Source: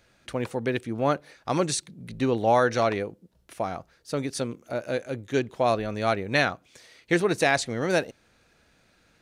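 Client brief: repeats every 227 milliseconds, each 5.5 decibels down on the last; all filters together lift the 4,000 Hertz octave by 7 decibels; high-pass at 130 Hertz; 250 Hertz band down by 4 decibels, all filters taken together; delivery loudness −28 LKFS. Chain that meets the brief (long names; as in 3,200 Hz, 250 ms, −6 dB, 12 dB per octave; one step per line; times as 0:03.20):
high-pass filter 130 Hz
parametric band 250 Hz −5 dB
parametric band 4,000 Hz +8 dB
repeating echo 227 ms, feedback 53%, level −5.5 dB
level −2.5 dB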